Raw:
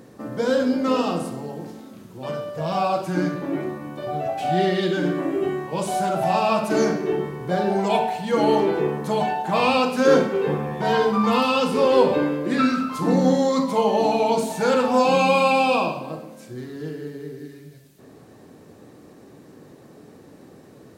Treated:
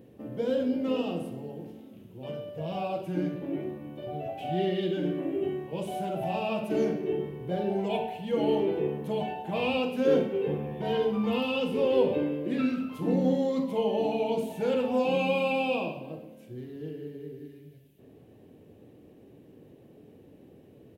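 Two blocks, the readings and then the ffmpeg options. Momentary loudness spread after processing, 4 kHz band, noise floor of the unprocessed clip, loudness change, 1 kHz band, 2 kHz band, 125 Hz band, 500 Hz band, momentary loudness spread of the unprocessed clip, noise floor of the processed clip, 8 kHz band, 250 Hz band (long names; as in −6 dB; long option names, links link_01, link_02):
15 LU, −9.0 dB, −48 dBFS, −8.0 dB, −13.5 dB, −10.5 dB, −6.5 dB, −7.0 dB, 16 LU, −54 dBFS, below −15 dB, −6.5 dB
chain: -af "firequalizer=gain_entry='entry(100,0);entry(150,-4);entry(460,-3);entry(1200,-17);entry(2900,-2);entry(4300,-16);entry(7700,-17);entry(12000,-7)':delay=0.05:min_phase=1,volume=-3dB"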